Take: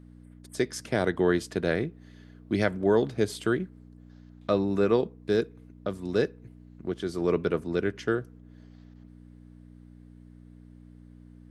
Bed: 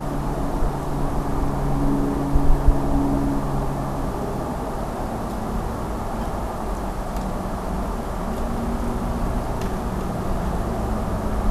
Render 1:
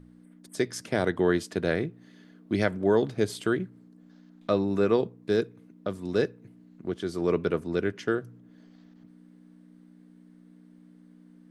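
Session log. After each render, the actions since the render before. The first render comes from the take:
hum removal 60 Hz, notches 2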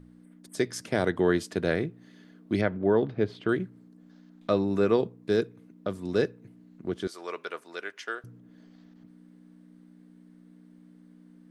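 0:02.61–0:03.49: high-frequency loss of the air 300 metres
0:07.07–0:08.24: high-pass filter 880 Hz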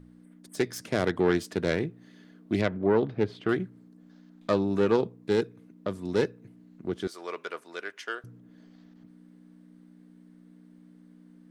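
phase distortion by the signal itself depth 0.15 ms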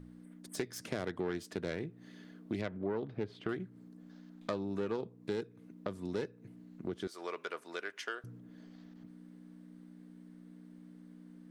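downward compressor 3 to 1, threshold −37 dBFS, peak gain reduction 14 dB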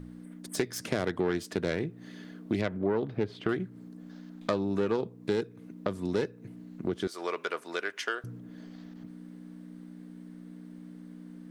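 level +7.5 dB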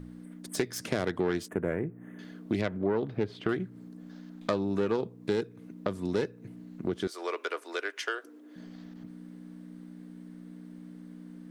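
0:01.48–0:02.19: Butterworth band-reject 4,600 Hz, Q 0.54
0:07.10–0:08.56: Chebyshev high-pass filter 280 Hz, order 5

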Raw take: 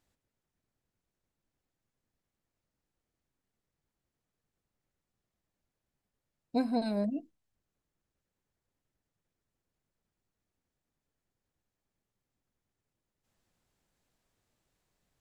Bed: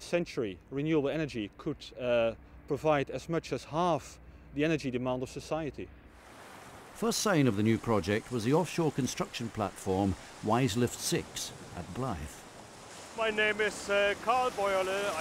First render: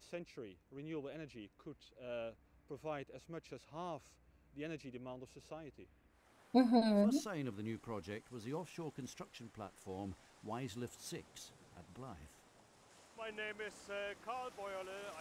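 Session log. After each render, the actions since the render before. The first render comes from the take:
mix in bed −16.5 dB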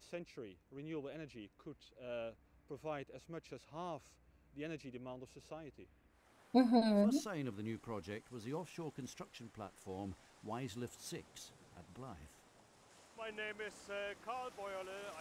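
no processing that can be heard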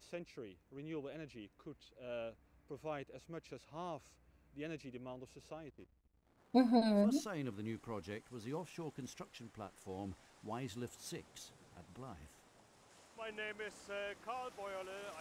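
0:05.68–0:06.75: slack as between gear wheels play −59 dBFS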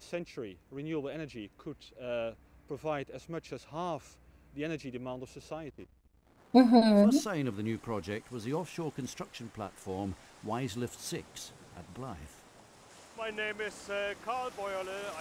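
level +9 dB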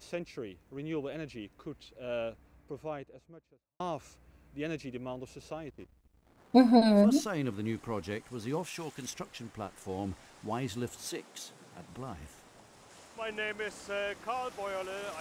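0:02.27–0:03.80: fade out and dull
0:08.63–0:09.11: tilt shelving filter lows −6 dB
0:11.07–0:11.90: high-pass filter 250 Hz → 96 Hz 24 dB per octave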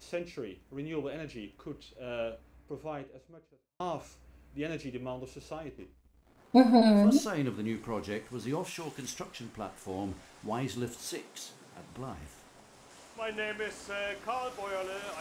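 reverb whose tail is shaped and stops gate 130 ms falling, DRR 7.5 dB

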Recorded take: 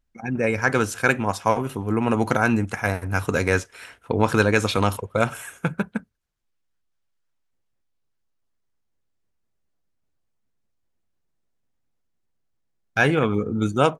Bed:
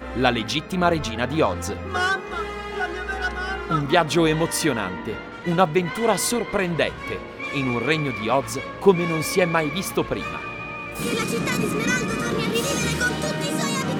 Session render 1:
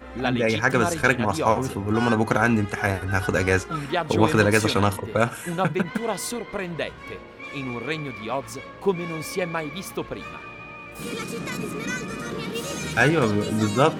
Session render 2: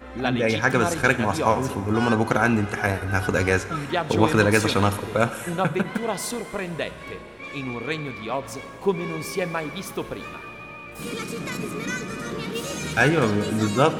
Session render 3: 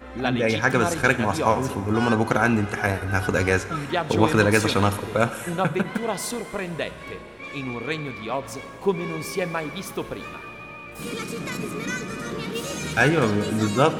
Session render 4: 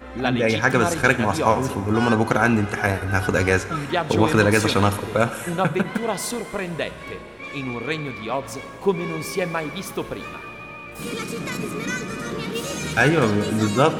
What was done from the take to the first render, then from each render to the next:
mix in bed −7 dB
four-comb reverb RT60 2.7 s, combs from 31 ms, DRR 13 dB
no processing that can be heard
level +2 dB; brickwall limiter −3 dBFS, peak gain reduction 3 dB

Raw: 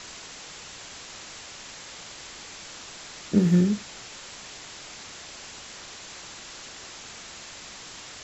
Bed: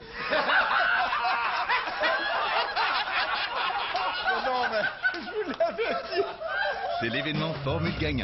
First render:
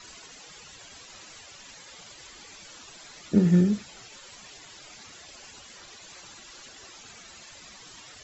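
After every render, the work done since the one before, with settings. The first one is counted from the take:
broadband denoise 13 dB, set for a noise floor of −43 dBFS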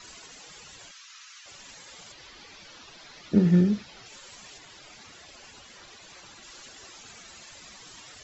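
0:00.91–0:01.46: Chebyshev band-pass filter 1,200–6,500 Hz, order 3
0:02.12–0:04.06: low-pass filter 5,600 Hz 24 dB per octave
0:04.58–0:06.43: high-frequency loss of the air 56 metres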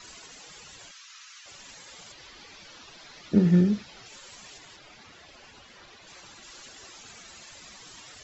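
0:04.76–0:06.07: high-frequency loss of the air 93 metres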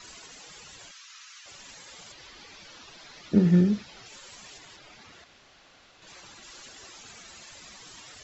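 0:05.24–0:06.02: fill with room tone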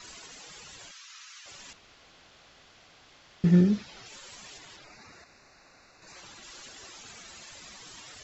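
0:01.73–0:03.44: fill with room tone
0:04.84–0:06.16: Butterworth band-reject 3,200 Hz, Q 2.7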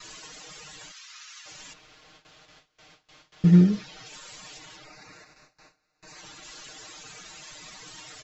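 noise gate with hold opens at −46 dBFS
comb filter 6.5 ms, depth 87%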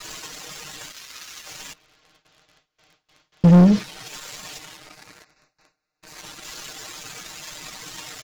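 leveller curve on the samples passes 3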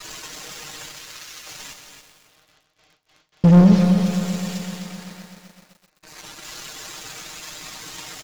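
repeating echo 277 ms, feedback 20%, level −9 dB
feedback echo at a low word length 128 ms, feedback 80%, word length 8 bits, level −9 dB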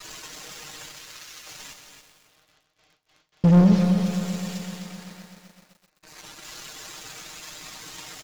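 level −4 dB

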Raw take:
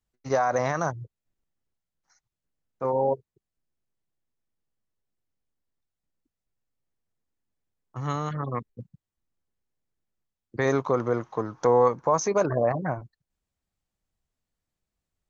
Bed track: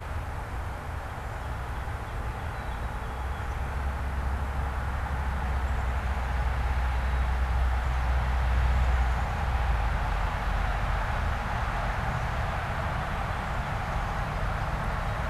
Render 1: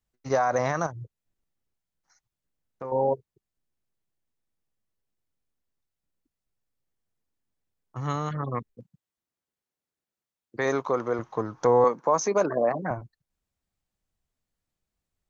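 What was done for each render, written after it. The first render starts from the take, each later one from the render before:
0:00.86–0:02.92: downward compressor 4 to 1, threshold −32 dBFS
0:08.75–0:11.19: high-pass filter 320 Hz 6 dB per octave
0:11.84–0:12.91: high-pass filter 180 Hz 24 dB per octave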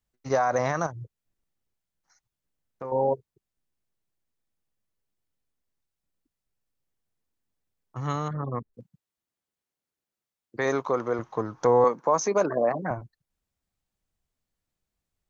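0:08.28–0:08.74: moving average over 16 samples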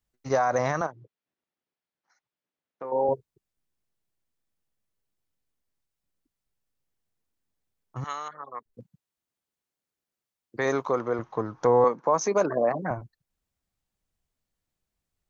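0:00.81–0:03.09: band-pass filter 250–3,700 Hz
0:08.04–0:08.66: high-pass filter 890 Hz
0:10.99–0:12.21: high-frequency loss of the air 78 metres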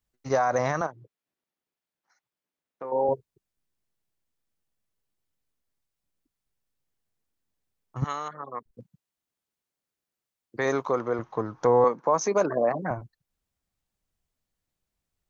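0:08.02–0:08.71: low-shelf EQ 440 Hz +11.5 dB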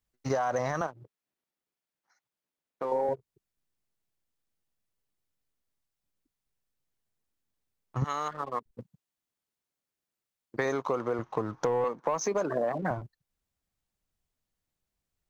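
leveller curve on the samples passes 1
downward compressor, threshold −26 dBFS, peak gain reduction 11 dB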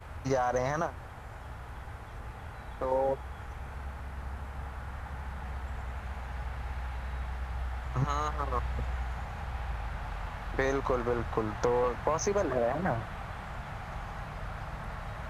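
mix in bed track −9.5 dB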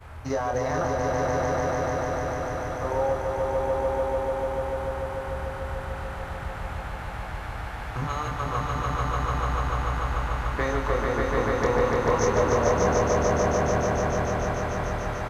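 double-tracking delay 26 ms −5 dB
echo that builds up and dies away 147 ms, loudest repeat 5, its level −3.5 dB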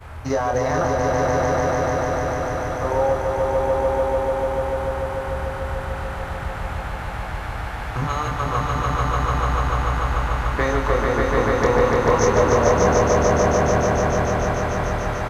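level +5.5 dB

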